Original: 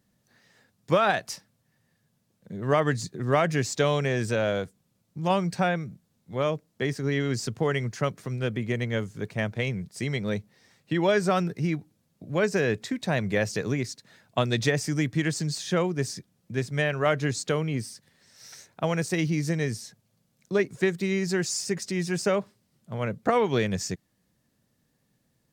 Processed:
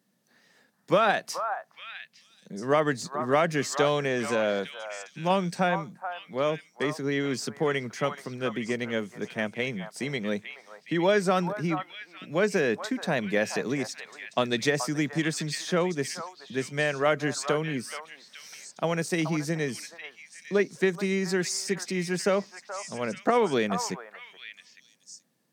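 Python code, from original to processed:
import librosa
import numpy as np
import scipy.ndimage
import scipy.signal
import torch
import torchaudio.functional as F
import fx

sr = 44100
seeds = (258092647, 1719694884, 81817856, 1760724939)

p1 = scipy.signal.sosfilt(scipy.signal.butter(4, 170.0, 'highpass', fs=sr, output='sos'), x)
p2 = fx.notch(p1, sr, hz=7100.0, q=24.0)
y = p2 + fx.echo_stepped(p2, sr, ms=428, hz=1000.0, octaves=1.4, feedback_pct=70, wet_db=-4.5, dry=0)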